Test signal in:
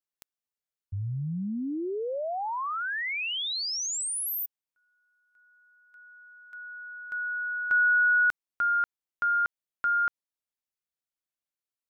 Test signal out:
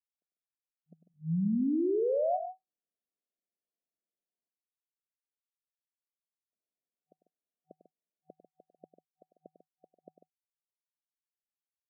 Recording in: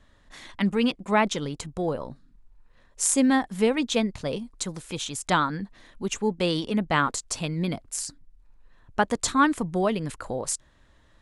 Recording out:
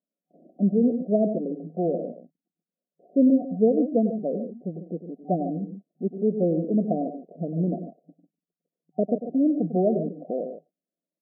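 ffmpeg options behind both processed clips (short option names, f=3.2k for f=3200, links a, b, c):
-af "agate=range=-29dB:threshold=-48dB:ratio=16:release=59:detection=peak,aecho=1:1:99.13|145.8:0.282|0.282,afftfilt=real='re*between(b*sr/4096,160,750)':imag='im*between(b*sr/4096,160,750)':win_size=4096:overlap=0.75,volume=2.5dB"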